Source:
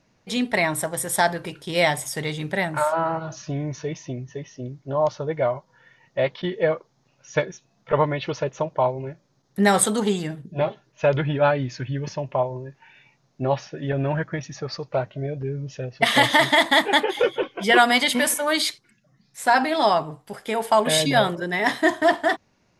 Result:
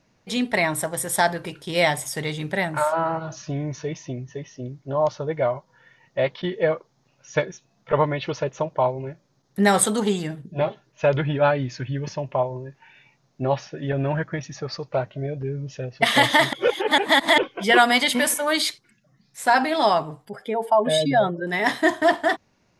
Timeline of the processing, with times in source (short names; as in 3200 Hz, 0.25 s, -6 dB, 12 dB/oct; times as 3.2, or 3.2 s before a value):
16.53–17.38 reverse
20.25–21.47 spectral contrast raised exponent 1.7